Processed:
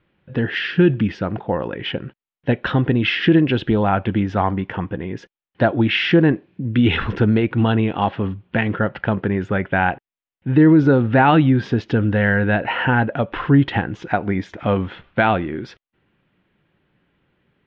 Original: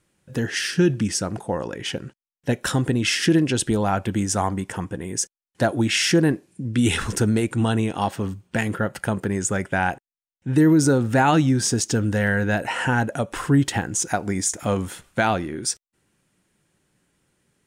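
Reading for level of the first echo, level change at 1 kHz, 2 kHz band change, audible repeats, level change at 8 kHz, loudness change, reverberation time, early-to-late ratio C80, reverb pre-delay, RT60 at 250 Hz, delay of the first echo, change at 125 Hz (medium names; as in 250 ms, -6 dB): no echo, +4.0 dB, +4.0 dB, no echo, under -30 dB, +3.5 dB, no reverb, no reverb, no reverb, no reverb, no echo, +4.0 dB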